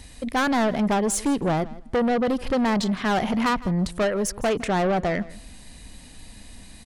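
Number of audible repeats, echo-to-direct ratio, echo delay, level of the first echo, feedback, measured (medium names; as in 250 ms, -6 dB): 2, -19.5 dB, 160 ms, -19.5 dB, 17%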